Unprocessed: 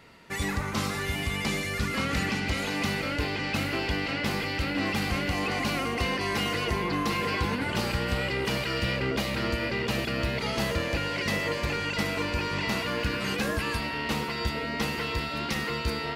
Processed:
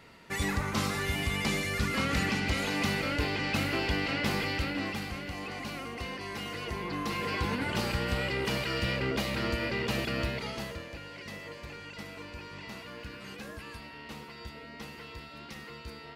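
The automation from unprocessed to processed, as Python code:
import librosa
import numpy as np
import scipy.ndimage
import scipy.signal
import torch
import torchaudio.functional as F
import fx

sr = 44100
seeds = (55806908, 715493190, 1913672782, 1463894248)

y = fx.gain(x, sr, db=fx.line((4.51, -1.0), (5.16, -10.0), (6.42, -10.0), (7.55, -2.5), (10.21, -2.5), (10.9, -14.5)))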